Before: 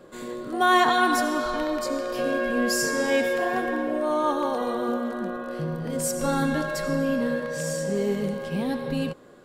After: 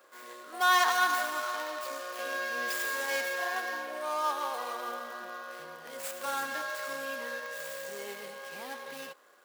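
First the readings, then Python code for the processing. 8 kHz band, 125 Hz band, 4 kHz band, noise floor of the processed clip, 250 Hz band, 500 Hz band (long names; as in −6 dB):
−7.0 dB, below −30 dB, −3.5 dB, −50 dBFS, −24.0 dB, −13.0 dB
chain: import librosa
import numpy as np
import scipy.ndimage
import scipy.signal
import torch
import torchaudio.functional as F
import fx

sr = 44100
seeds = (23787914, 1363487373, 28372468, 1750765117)

y = scipy.ndimage.median_filter(x, 15, mode='constant')
y = scipy.signal.sosfilt(scipy.signal.butter(2, 1100.0, 'highpass', fs=sr, output='sos'), y)
y = fx.high_shelf(y, sr, hz=11000.0, db=12.0)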